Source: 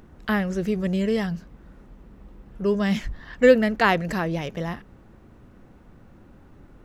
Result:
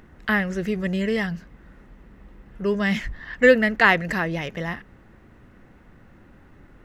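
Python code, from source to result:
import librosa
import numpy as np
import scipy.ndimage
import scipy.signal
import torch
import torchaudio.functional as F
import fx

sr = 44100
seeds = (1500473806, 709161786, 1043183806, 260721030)

y = fx.peak_eq(x, sr, hz=2000.0, db=9.5, octaves=0.9)
y = fx.notch(y, sr, hz=2300.0, q=17.0)
y = y * librosa.db_to_amplitude(-1.0)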